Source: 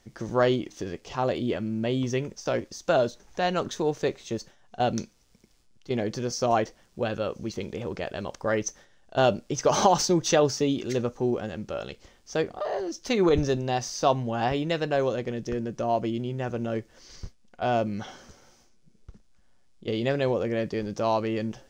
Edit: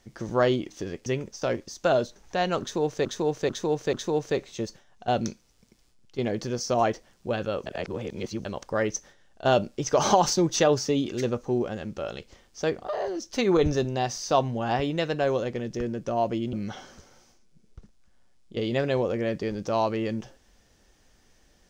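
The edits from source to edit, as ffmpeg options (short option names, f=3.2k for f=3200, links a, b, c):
-filter_complex "[0:a]asplit=8[a][b][c][d][e][f][g][h];[a]atrim=end=1.062[i];[b]atrim=start=2.098:end=4.092[j];[c]atrim=start=3.648:end=4.092[k];[d]atrim=start=3.648:end=4.092[l];[e]atrim=start=3.648:end=7.382[m];[f]atrim=start=7.378:end=8.172,asetpts=PTS-STARTPTS,areverse[n];[g]atrim=start=8.168:end=16.252[o];[h]atrim=start=17.838[p];[i][j]acrossfade=d=0.004:c1=hsin:c2=hsin[q];[q][k]acrossfade=d=0.004:c1=hsin:c2=hsin[r];[r][l]acrossfade=d=0.004:c1=hsin:c2=hsin[s];[s][m]acrossfade=d=0.004:c1=hsin:c2=hsin[t];[t][n]acrossfade=d=0.004:c1=hsin:c2=hsin[u];[u][o]acrossfade=d=0.004:c1=hsin:c2=hsin[v];[v][p]acrossfade=d=0.004:c1=hsin:c2=hsin"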